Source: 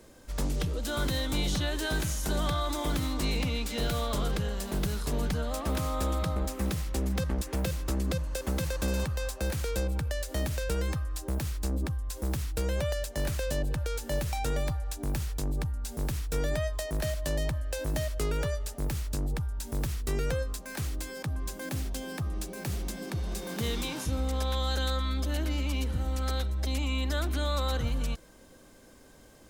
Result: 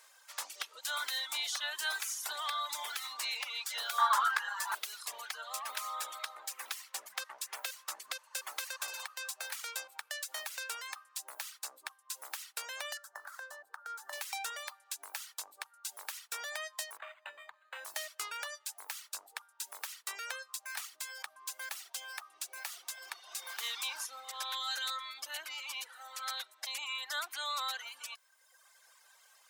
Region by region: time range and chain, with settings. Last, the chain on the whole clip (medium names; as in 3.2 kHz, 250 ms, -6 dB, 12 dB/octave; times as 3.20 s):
3.98–4.75 s: high-order bell 1.2 kHz +14 dB 1.3 oct + doubling 16 ms -7 dB
12.97–14.13 s: resonant high shelf 1.9 kHz -9 dB, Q 3 + compression 5:1, threshold -31 dBFS + high-pass 140 Hz
16.97–17.85 s: bass shelf 120 Hz +7 dB + compression, threshold -27 dBFS + decimation joined by straight lines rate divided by 8×
whole clip: high-pass 930 Hz 24 dB/octave; reverb removal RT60 1.3 s; trim +1 dB